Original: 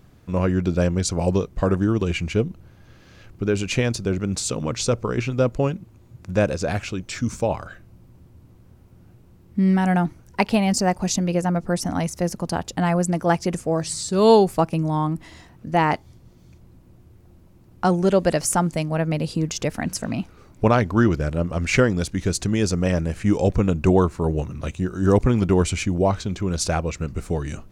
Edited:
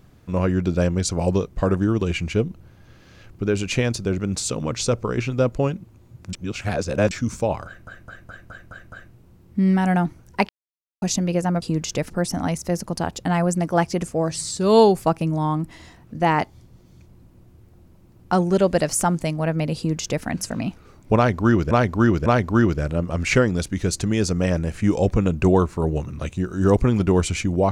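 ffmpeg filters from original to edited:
-filter_complex "[0:a]asplit=16[a][b][c][d][e][f][g][h][i][j][k][l][m][n][o][p];[a]atrim=end=6.332[q];[b]atrim=start=6.328:end=7.112,asetpts=PTS-STARTPTS,areverse[r];[c]atrim=start=7.108:end=7.872[s];[d]atrim=start=7.658:end=7.872[t];[e]atrim=start=7.658:end=7.872[u];[f]atrim=start=7.658:end=7.872[v];[g]atrim=start=7.658:end=7.872[w];[h]atrim=start=7.658:end=7.872[x];[i]atrim=start=7.658:end=7.872[y];[j]atrim=start=9.128:end=10.49,asetpts=PTS-STARTPTS,afade=t=out:st=1.358:d=0.004:c=hsin[z];[k]atrim=start=10.49:end=11.02,asetpts=PTS-STARTPTS,volume=0[aa];[l]atrim=start=11.02:end=11.622,asetpts=PTS-STARTPTS,afade=t=in:d=0.004:c=hsin[ab];[m]atrim=start=19.288:end=19.772[ac];[n]atrim=start=11.618:end=21.232[ad];[o]atrim=start=20.678:end=21.232[ae];[p]atrim=start=20.678[af];[q][r]acrossfade=d=0.004:c1=hsin:c2=hsin[ag];[ag][s]acrossfade=d=0.004:c1=hsin:c2=hsin[ah];[ah][t]acrossfade=d=0.004:c1=hsin:c2=hsin[ai];[ai][u]acrossfade=d=0.004:c1=hsin:c2=hsin[aj];[aj][v]acrossfade=d=0.004:c1=hsin:c2=hsin[ak];[ak][w]acrossfade=d=0.004:c1=hsin:c2=hsin[al];[al][x]acrossfade=d=0.004:c1=hsin:c2=hsin[am];[am][y]acrossfade=d=0.004:c1=hsin:c2=hsin[an];[z][aa][ab]concat=n=3:v=0:a=1[ao];[an][ao]acrossfade=d=0.004:c1=hsin:c2=hsin[ap];[ap][ac]acrossfade=d=0.004:c1=hsin:c2=hsin[aq];[aq][ad]acrossfade=d=0.004:c1=hsin:c2=hsin[ar];[ar][ae]acrossfade=d=0.004:c1=hsin:c2=hsin[as];[as][af]acrossfade=d=0.004:c1=hsin:c2=hsin"

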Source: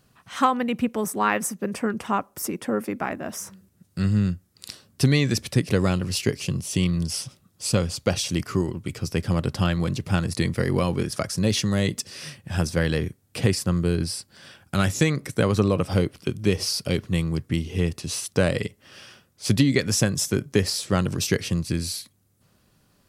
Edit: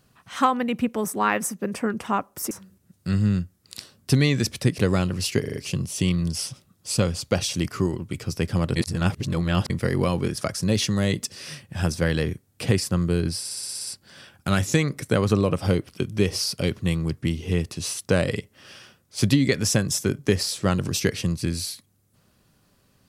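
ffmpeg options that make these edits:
-filter_complex "[0:a]asplit=16[a][b][c][d][e][f][g][h][i][j][k][l][m][n][o][p];[a]atrim=end=2.512[q];[b]atrim=start=3.418:end=6.352[r];[c]atrim=start=6.308:end=6.352[s];[d]atrim=start=6.308:end=6.352[t];[e]atrim=start=6.308:end=6.352[u];[f]atrim=start=6.308:end=9.512[v];[g]atrim=start=9.508:end=10.452,asetpts=PTS-STARTPTS,areverse[w];[h]atrim=start=10.448:end=14.202[x];[i]atrim=start=14.138:end=14.202[y];[j]atrim=start=14.138:end=14.202[z];[k]atrim=start=14.138:end=14.202[aa];[l]atrim=start=14.138:end=14.202[ab];[m]atrim=start=14.138:end=14.202[ac];[n]atrim=start=14.138:end=14.202[ad];[o]atrim=start=14.138:end=14.202[ae];[p]atrim=start=14.138[af];[q][r]acrossfade=d=0.004:c1=hsin:c2=hsin[ag];[ag][s]acrossfade=d=0.004:c1=hsin:c2=hsin[ah];[ah][t]acrossfade=d=0.004:c1=hsin:c2=hsin[ai];[ai][u]acrossfade=d=0.004:c1=hsin:c2=hsin[aj];[aj][v]acrossfade=d=0.004:c1=hsin:c2=hsin[ak];[ak][w]acrossfade=d=0.004:c1=hsin:c2=hsin[al];[al][x]acrossfade=d=0.004:c1=hsin:c2=hsin[am];[am][y]acrossfade=d=0.004:c1=hsin:c2=hsin[an];[an][z]acrossfade=d=0.004:c1=hsin:c2=hsin[ao];[ao][aa]acrossfade=d=0.004:c1=hsin:c2=hsin[ap];[ap][ab]acrossfade=d=0.004:c1=hsin:c2=hsin[aq];[aq][ac]acrossfade=d=0.004:c1=hsin:c2=hsin[ar];[ar][ad]acrossfade=d=0.004:c1=hsin:c2=hsin[as];[as][ae]acrossfade=d=0.004:c1=hsin:c2=hsin[at];[at][af]acrossfade=d=0.004:c1=hsin:c2=hsin"

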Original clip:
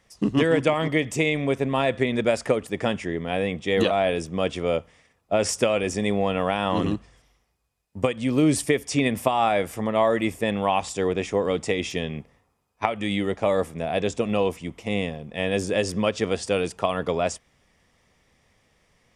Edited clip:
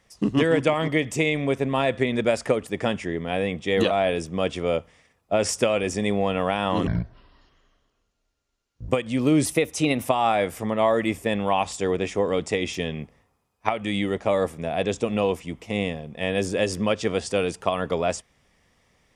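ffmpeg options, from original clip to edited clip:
-filter_complex "[0:a]asplit=5[a][b][c][d][e];[a]atrim=end=6.874[f];[b]atrim=start=6.87:end=8,asetpts=PTS-STARTPTS,asetrate=24696,aresample=44100,atrim=end_sample=88987,asetpts=PTS-STARTPTS[g];[c]atrim=start=7.996:end=8.574[h];[d]atrim=start=8.57:end=9.22,asetpts=PTS-STARTPTS,asetrate=48069,aresample=44100,atrim=end_sample=26298,asetpts=PTS-STARTPTS[i];[e]atrim=start=9.216[j];[f][g]acrossfade=d=0.004:c1=hsin:c2=hsin[k];[k][h]acrossfade=d=0.004:c1=hsin:c2=hsin[l];[l][i]acrossfade=d=0.004:c1=hsin:c2=hsin[m];[m][j]acrossfade=d=0.004:c1=hsin:c2=hsin"

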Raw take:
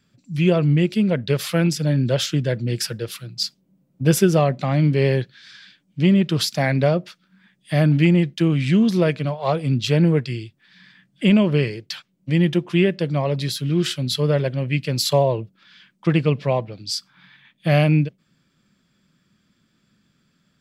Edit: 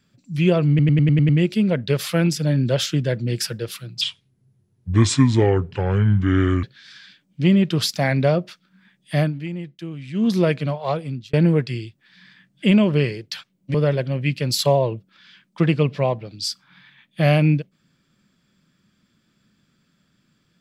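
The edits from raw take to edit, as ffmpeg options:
-filter_complex "[0:a]asplit=13[a][b][c][d][e][f][g][h][i][j][k][l][m];[a]atrim=end=0.792[n];[b]atrim=start=0.688:end=0.792[o];[c]atrim=start=0.688:end=0.792[p];[d]atrim=start=0.688:end=0.792[q];[e]atrim=start=0.688:end=0.792[r];[f]atrim=start=0.688:end=0.792[s];[g]atrim=start=0.688:end=3.414[t];[h]atrim=start=3.41:end=5.22,asetpts=PTS-STARTPTS,asetrate=30429,aresample=44100[u];[i]atrim=start=5.216:end=7.92,asetpts=PTS-STARTPTS,afade=t=out:st=2.554:d=0.15:silence=0.199526[v];[j]atrim=start=7.92:end=8.72,asetpts=PTS-STARTPTS,volume=-14dB[w];[k]atrim=start=8.72:end=9.92,asetpts=PTS-STARTPTS,afade=t=in:d=0.15:silence=0.199526,afade=t=out:st=0.65:d=0.55[x];[l]atrim=start=9.92:end=12.332,asetpts=PTS-STARTPTS,afade=t=in:d=0.004:c=hsin[y];[m]atrim=start=14.208[z];[n][o]acrossfade=d=0.004:c1=hsin:c2=hsin[aa];[aa][p]acrossfade=d=0.004:c1=hsin:c2=hsin[ab];[ab][q]acrossfade=d=0.004:c1=hsin:c2=hsin[ac];[ac][r]acrossfade=d=0.004:c1=hsin:c2=hsin[ad];[ad][s]acrossfade=d=0.004:c1=hsin:c2=hsin[ae];[ae][t]acrossfade=d=0.004:c1=hsin:c2=hsin[af];[af][u]acrossfade=d=0.004:c1=hsin:c2=hsin[ag];[v][w][x][y]concat=n=4:v=0:a=1[ah];[ag][ah]acrossfade=d=0.004:c1=hsin:c2=hsin[ai];[ai][z]acrossfade=d=0.004:c1=hsin:c2=hsin"

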